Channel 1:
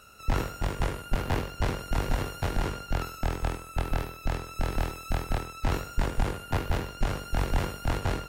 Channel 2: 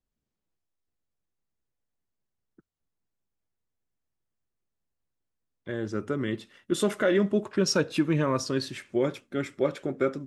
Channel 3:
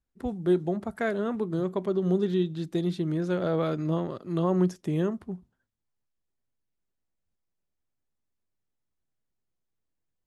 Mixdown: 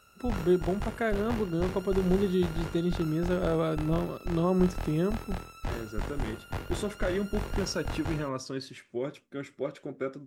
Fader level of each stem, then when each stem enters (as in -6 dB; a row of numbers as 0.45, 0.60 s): -7.0, -7.5, -1.0 dB; 0.00, 0.00, 0.00 s